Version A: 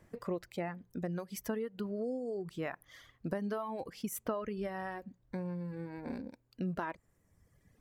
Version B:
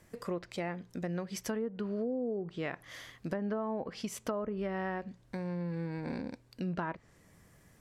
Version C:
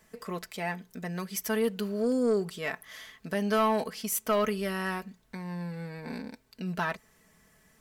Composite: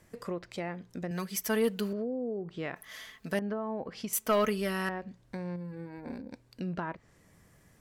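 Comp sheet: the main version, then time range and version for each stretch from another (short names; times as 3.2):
B
1.11–1.93 from C
2.76–3.39 from C
4.13–4.89 from C
5.56–6.31 from A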